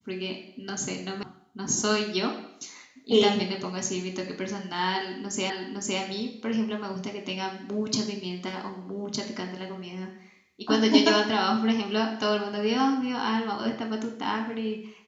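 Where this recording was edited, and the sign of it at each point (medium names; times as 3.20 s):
1.23 s: sound stops dead
5.50 s: repeat of the last 0.51 s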